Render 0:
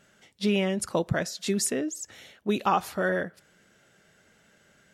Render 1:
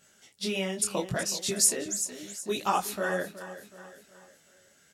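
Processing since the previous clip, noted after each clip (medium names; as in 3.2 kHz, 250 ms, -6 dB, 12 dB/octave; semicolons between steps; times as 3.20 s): tone controls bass -3 dB, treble +11 dB; feedback delay 371 ms, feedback 44%, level -13 dB; detune thickener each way 26 cents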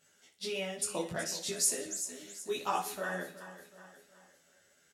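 tone controls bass -4 dB, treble -1 dB; doubling 12 ms -3.5 dB; on a send: feedback delay 60 ms, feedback 44%, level -12 dB; on the sum: trim -7 dB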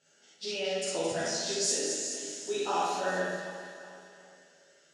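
cabinet simulation 130–6700 Hz, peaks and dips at 190 Hz -9 dB, 1.1 kHz -10 dB, 2.1 kHz -7 dB, 3.6 kHz -3 dB; two-band feedback delay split 2 kHz, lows 141 ms, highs 217 ms, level -6.5 dB; Schroeder reverb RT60 0.52 s, DRR -3 dB; trim +1.5 dB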